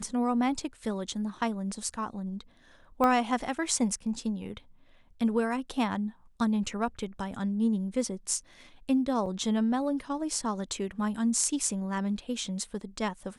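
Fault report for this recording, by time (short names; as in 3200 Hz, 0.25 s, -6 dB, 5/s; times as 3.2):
3.04 pop -15 dBFS
9.26 gap 4.6 ms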